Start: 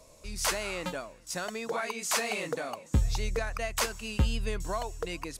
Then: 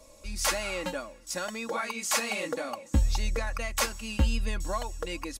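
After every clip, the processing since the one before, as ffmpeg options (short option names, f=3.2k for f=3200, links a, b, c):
-af "aecho=1:1:3.6:0.64"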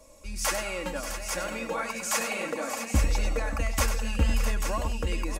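-filter_complex "[0:a]equalizer=f=4k:t=o:w=0.61:g=-5.5,asplit=2[a][b];[b]aecho=0:1:98|583|587|657|840:0.355|0.224|0.126|0.316|0.422[c];[a][c]amix=inputs=2:normalize=0"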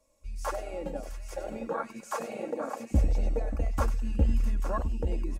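-af "afwtdn=0.0447"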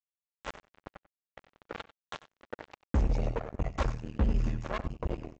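-filter_complex "[0:a]highshelf=f=5.5k:g=-7.5,aresample=16000,acrusher=bits=3:mix=0:aa=0.5,aresample=44100,asplit=2[a][b];[b]adelay=93.29,volume=-17dB,highshelf=f=4k:g=-2.1[c];[a][c]amix=inputs=2:normalize=0,volume=-3.5dB"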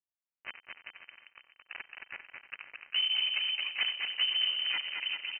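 -af "adynamicequalizer=threshold=0.00316:dfrequency=810:dqfactor=0.8:tfrequency=810:tqfactor=0.8:attack=5:release=100:ratio=0.375:range=3:mode=boostabove:tftype=bell,aecho=1:1:220|396|536.8|649.4|739.6:0.631|0.398|0.251|0.158|0.1,lowpass=f=2.6k:t=q:w=0.5098,lowpass=f=2.6k:t=q:w=0.6013,lowpass=f=2.6k:t=q:w=0.9,lowpass=f=2.6k:t=q:w=2.563,afreqshift=-3100,volume=-5dB"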